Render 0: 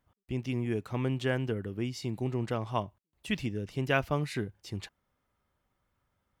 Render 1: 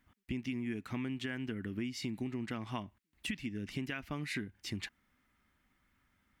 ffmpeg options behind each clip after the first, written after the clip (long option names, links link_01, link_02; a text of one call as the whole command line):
ffmpeg -i in.wav -af "equalizer=frequency=125:width_type=o:width=1:gain=-6,equalizer=frequency=250:width_type=o:width=1:gain=8,equalizer=frequency=500:width_type=o:width=1:gain=-10,equalizer=frequency=1000:width_type=o:width=1:gain=-3,equalizer=frequency=2000:width_type=o:width=1:gain=8,alimiter=limit=-21dB:level=0:latency=1:release=461,acompressor=threshold=-39dB:ratio=6,volume=3.5dB" out.wav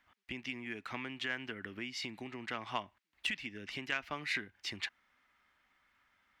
ffmpeg -i in.wav -filter_complex "[0:a]acrossover=split=500 5700:gain=0.158 1 0.224[link_01][link_02][link_03];[link_01][link_02][link_03]amix=inputs=3:normalize=0,aeval=exprs='0.0531*(cos(1*acos(clip(val(0)/0.0531,-1,1)))-cos(1*PI/2))+0.00531*(cos(3*acos(clip(val(0)/0.0531,-1,1)))-cos(3*PI/2))':channel_layout=same,volume=8dB" out.wav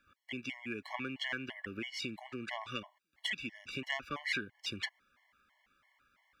ffmpeg -i in.wav -af "afftfilt=real='re*gt(sin(2*PI*3*pts/sr)*(1-2*mod(floor(b*sr/1024/570),2)),0)':imag='im*gt(sin(2*PI*3*pts/sr)*(1-2*mod(floor(b*sr/1024/570),2)),0)':win_size=1024:overlap=0.75,volume=4dB" out.wav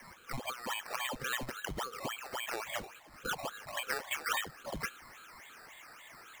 ffmpeg -i in.wav -af "aeval=exprs='val(0)+0.5*0.00376*sgn(val(0))':channel_layout=same,lowpass=frequency=2900:width_type=q:width=0.5098,lowpass=frequency=2900:width_type=q:width=0.6013,lowpass=frequency=2900:width_type=q:width=0.9,lowpass=frequency=2900:width_type=q:width=2.563,afreqshift=-3400,acrusher=samples=11:mix=1:aa=0.000001:lfo=1:lforange=6.6:lforate=3.6,volume=1.5dB" out.wav